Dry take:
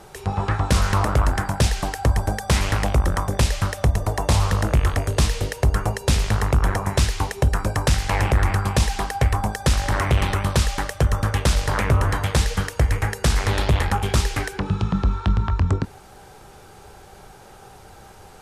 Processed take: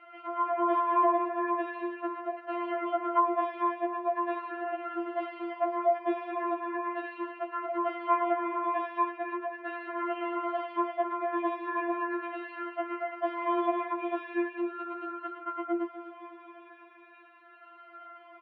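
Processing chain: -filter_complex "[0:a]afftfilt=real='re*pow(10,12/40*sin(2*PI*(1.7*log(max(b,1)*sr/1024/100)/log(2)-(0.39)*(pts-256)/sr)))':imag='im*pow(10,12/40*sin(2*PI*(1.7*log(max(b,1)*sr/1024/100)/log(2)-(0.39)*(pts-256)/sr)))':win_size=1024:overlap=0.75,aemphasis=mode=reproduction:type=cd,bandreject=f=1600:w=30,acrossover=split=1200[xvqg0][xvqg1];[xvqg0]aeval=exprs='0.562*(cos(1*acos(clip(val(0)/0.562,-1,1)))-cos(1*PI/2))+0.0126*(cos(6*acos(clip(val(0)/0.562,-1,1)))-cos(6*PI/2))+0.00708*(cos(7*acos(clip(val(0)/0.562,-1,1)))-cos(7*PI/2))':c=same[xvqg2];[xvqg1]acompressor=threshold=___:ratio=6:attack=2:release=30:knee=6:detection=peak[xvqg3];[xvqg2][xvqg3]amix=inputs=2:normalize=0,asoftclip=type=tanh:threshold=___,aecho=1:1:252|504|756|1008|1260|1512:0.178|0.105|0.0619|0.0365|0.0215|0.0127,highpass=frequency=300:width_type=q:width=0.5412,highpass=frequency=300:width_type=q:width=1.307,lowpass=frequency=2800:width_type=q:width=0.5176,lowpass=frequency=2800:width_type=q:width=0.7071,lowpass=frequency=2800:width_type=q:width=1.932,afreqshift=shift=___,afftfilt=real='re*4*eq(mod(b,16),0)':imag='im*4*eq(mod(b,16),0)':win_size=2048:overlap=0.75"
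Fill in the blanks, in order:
-42dB, -8dB, 55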